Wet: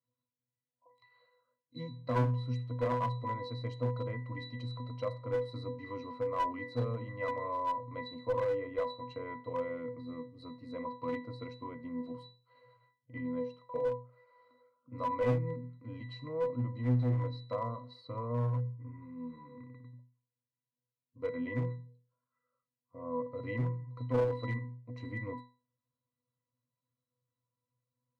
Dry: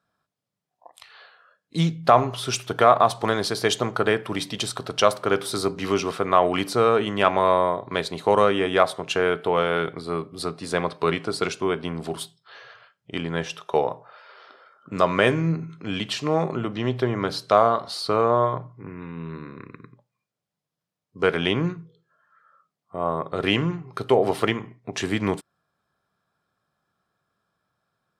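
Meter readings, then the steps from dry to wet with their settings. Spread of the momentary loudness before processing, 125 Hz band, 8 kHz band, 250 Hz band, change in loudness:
14 LU, −5.0 dB, below −30 dB, −12.5 dB, −13.5 dB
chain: resonances in every octave B, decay 0.35 s
asymmetric clip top −32 dBFS
level +3.5 dB

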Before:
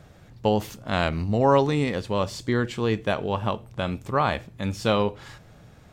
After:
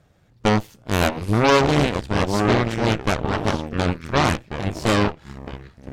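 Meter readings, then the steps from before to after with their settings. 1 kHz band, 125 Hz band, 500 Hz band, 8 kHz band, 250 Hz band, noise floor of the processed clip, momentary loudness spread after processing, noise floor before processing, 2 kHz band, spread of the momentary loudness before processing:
+3.5 dB, +5.0 dB, +2.5 dB, +10.0 dB, +5.0 dB, −56 dBFS, 11 LU, −51 dBFS, +7.0 dB, 10 LU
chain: delay with pitch and tempo change per echo 411 ms, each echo −5 semitones, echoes 2, each echo −6 dB
harmonic generator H 8 −10 dB, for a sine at −7 dBFS
expander for the loud parts 1.5 to 1, over −34 dBFS
level +1.5 dB

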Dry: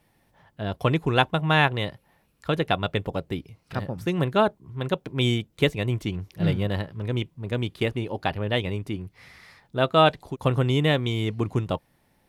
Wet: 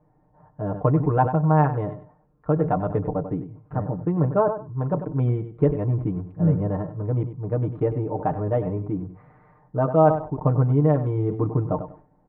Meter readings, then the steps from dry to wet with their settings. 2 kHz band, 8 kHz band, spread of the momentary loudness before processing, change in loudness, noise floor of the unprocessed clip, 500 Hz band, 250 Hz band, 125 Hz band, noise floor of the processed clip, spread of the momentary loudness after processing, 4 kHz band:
−13.5 dB, below −30 dB, 12 LU, +2.0 dB, −66 dBFS, +2.5 dB, +3.0 dB, +4.0 dB, −61 dBFS, 12 LU, below −35 dB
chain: low-pass filter 1,100 Hz 24 dB per octave
comb filter 6.6 ms, depth 97%
in parallel at −2.5 dB: downward compressor, threshold −24 dBFS, peak gain reduction 14 dB
on the sum: repeating echo 97 ms, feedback 16%, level −13.5 dB
level that may fall only so fast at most 120 dB per second
level −3.5 dB

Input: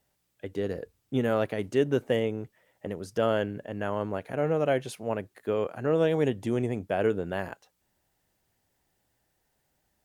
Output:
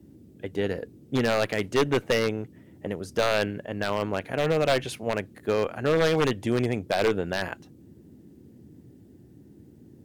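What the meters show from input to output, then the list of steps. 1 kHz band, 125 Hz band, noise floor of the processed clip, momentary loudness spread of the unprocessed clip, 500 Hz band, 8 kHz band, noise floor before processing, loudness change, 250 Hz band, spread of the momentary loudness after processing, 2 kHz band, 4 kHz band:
+4.5 dB, +2.0 dB, −53 dBFS, 13 LU, +2.0 dB, +9.0 dB, −75 dBFS, +2.5 dB, +1.5 dB, 12 LU, +7.0 dB, +10.0 dB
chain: dynamic equaliser 2,400 Hz, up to +8 dB, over −47 dBFS, Q 0.79
harmonic generator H 2 −13 dB, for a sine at −10 dBFS
wave folding −17 dBFS
noise in a band 71–340 Hz −53 dBFS
level +2.5 dB

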